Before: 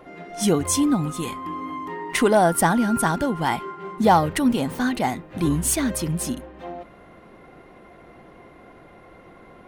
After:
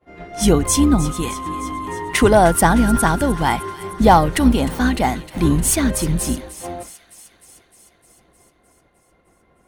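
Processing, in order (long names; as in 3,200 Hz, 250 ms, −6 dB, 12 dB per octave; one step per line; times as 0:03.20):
sub-octave generator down 2 octaves, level −3 dB
downward expander −35 dBFS
delay with a high-pass on its return 306 ms, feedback 67%, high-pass 2,000 Hz, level −13.5 dB
level +4.5 dB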